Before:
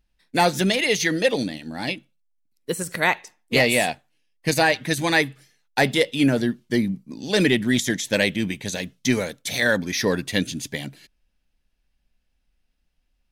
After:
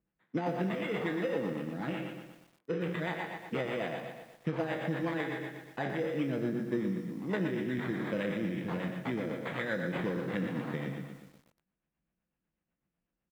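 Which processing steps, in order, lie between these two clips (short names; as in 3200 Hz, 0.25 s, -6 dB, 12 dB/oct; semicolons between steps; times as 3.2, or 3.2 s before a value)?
spectral trails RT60 0.78 s; low shelf 280 Hz +9 dB; comb 6 ms, depth 39%; compressor 12:1, threshold -18 dBFS, peak gain reduction 12 dB; rotary speaker horn 8 Hz; careless resampling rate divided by 8×, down none, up hold; BPF 160–2000 Hz; lo-fi delay 0.12 s, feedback 55%, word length 8-bit, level -8 dB; gain -8.5 dB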